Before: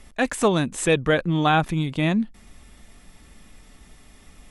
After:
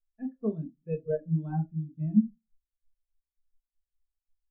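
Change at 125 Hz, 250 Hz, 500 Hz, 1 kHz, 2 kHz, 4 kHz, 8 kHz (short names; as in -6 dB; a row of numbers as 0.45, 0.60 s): -6.5 dB, -6.0 dB, -12.0 dB, -23.5 dB, under -30 dB, under -40 dB, under -40 dB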